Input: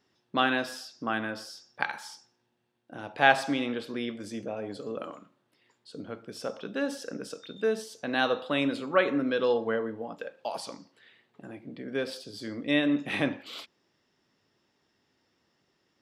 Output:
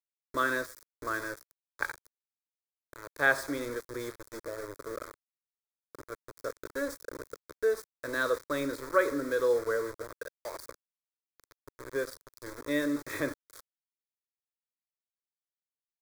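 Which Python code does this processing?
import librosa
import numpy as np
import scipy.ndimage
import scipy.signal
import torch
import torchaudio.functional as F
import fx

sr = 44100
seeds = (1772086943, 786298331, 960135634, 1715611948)

y = np.where(np.abs(x) >= 10.0 ** (-34.0 / 20.0), x, 0.0)
y = fx.fixed_phaser(y, sr, hz=770.0, stages=6)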